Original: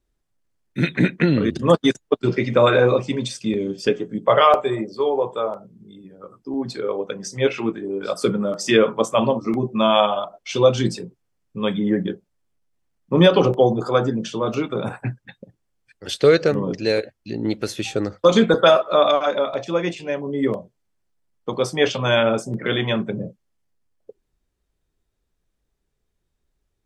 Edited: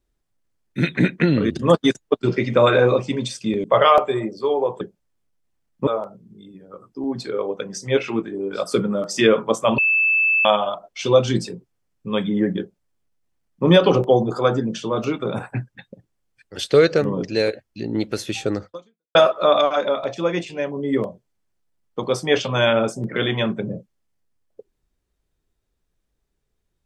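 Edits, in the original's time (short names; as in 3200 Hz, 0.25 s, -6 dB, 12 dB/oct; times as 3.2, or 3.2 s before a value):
3.64–4.2 cut
9.28–9.95 bleep 2630 Hz -14.5 dBFS
12.1–13.16 copy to 5.37
18.16–18.65 fade out exponential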